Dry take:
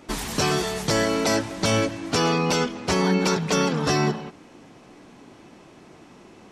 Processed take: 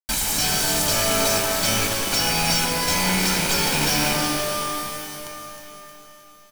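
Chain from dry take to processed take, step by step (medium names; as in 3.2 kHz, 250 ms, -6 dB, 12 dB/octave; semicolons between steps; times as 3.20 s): rattle on loud lows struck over -26 dBFS, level -18 dBFS; pre-emphasis filter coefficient 0.8; hum notches 60/120/180 Hz; comb 1.3 ms, depth 95%; compression 3:1, threshold -35 dBFS, peak gain reduction 9.5 dB; added noise brown -50 dBFS; companded quantiser 2-bit; on a send: echo whose repeats swap between lows and highs 156 ms, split 2.4 kHz, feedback 76%, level -7 dB; on the sum: pitch-shifted reverb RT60 2.2 s, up +12 st, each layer -2 dB, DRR 4 dB; trim +4.5 dB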